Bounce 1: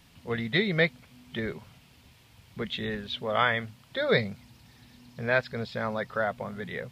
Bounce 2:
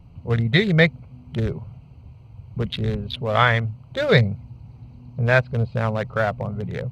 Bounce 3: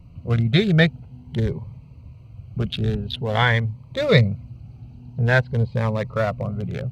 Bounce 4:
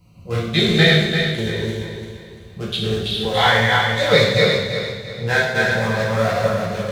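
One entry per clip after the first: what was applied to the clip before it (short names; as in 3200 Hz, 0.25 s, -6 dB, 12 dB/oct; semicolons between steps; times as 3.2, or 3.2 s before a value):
Wiener smoothing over 25 samples; resonant low shelf 170 Hz +7.5 dB, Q 1.5; gain +7.5 dB
cascading phaser rising 0.48 Hz; gain +1.5 dB
regenerating reverse delay 0.171 s, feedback 60%, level -1.5 dB; tone controls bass -9 dB, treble +11 dB; two-slope reverb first 0.86 s, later 2.8 s, DRR -6.5 dB; gain -4 dB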